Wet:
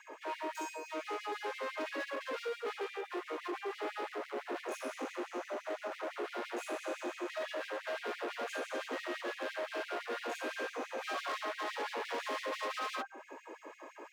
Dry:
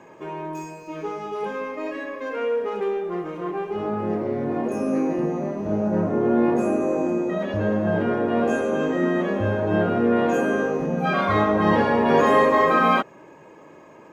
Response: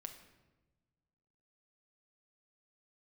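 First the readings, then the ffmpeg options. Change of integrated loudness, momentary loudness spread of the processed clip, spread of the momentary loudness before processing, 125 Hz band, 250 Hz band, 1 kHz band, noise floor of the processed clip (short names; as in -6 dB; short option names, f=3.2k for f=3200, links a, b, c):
-17.0 dB, 4 LU, 13 LU, under -40 dB, -23.5 dB, -16.0 dB, -55 dBFS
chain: -filter_complex "[0:a]acrossover=split=380|1500[a][b][c];[a]acompressor=threshold=-37dB:ratio=4[d];[b]acompressor=threshold=-31dB:ratio=4[e];[c]acompressor=threshold=-40dB:ratio=4[f];[d][e][f]amix=inputs=3:normalize=0,bandreject=f=98.8:t=h:w=4,bandreject=f=197.6:t=h:w=4,bandreject=f=296.4:t=h:w=4,bandreject=f=395.2:t=h:w=4,bandreject=f=494:t=h:w=4,bandreject=f=592.8:t=h:w=4,bandreject=f=691.6:t=h:w=4,bandreject=f=790.4:t=h:w=4,bandreject=f=889.2:t=h:w=4,bandreject=f=988:t=h:w=4,bandreject=f=1.0868k:t=h:w=4,bandreject=f=1.1856k:t=h:w=4,bandreject=f=1.2844k:t=h:w=4,bandreject=f=1.3832k:t=h:w=4,bandreject=f=1.482k:t=h:w=4,bandreject=f=1.5808k:t=h:w=4,asoftclip=type=hard:threshold=-34dB,afftfilt=real='re*gte(b*sr/1024,230*pow(2000/230,0.5+0.5*sin(2*PI*5.9*pts/sr)))':imag='im*gte(b*sr/1024,230*pow(2000/230,0.5+0.5*sin(2*PI*5.9*pts/sr)))':win_size=1024:overlap=0.75"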